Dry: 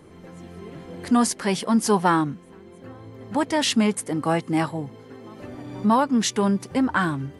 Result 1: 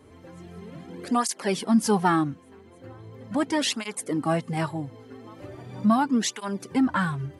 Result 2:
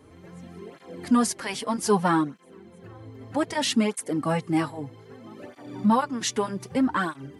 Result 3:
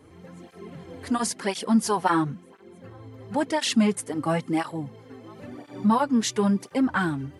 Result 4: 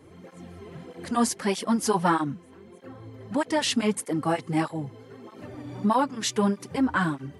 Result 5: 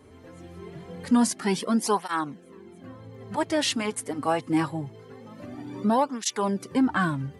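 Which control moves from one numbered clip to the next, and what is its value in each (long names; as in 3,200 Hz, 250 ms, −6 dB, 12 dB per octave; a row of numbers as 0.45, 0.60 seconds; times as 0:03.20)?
through-zero flanger with one copy inverted, nulls at: 0.39, 0.63, 0.97, 1.6, 0.24 Hertz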